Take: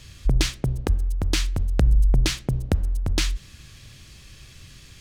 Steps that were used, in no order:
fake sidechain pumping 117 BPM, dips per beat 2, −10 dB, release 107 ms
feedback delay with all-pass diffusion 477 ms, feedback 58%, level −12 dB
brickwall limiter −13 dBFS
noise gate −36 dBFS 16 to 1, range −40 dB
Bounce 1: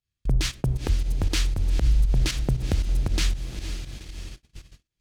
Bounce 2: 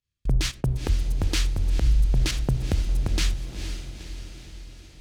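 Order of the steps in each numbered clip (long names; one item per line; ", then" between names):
feedback delay with all-pass diffusion, then noise gate, then fake sidechain pumping, then brickwall limiter
noise gate, then fake sidechain pumping, then feedback delay with all-pass diffusion, then brickwall limiter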